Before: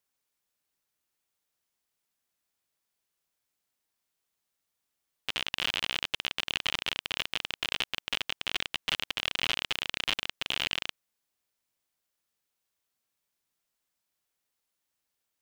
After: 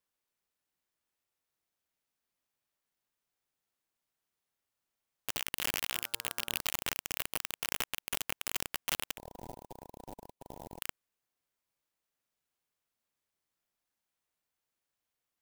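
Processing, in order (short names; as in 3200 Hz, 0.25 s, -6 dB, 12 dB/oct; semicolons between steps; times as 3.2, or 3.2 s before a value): 5.92–6.6 de-hum 116.4 Hz, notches 14; 9.17–10.82 brick-wall FIR band-stop 1000–14000 Hz; clock jitter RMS 0.062 ms; gain -3.5 dB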